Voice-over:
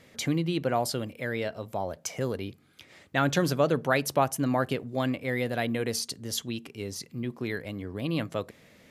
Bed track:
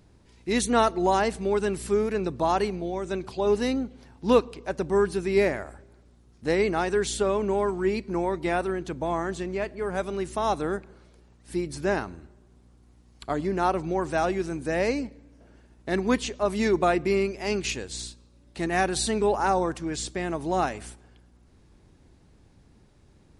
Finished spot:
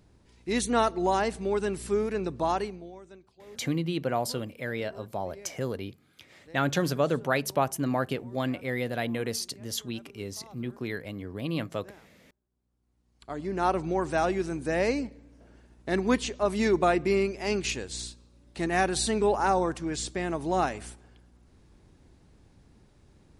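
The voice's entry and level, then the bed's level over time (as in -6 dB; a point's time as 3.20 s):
3.40 s, -1.5 dB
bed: 2.51 s -3 dB
3.36 s -26.5 dB
12.46 s -26.5 dB
13.69 s -1 dB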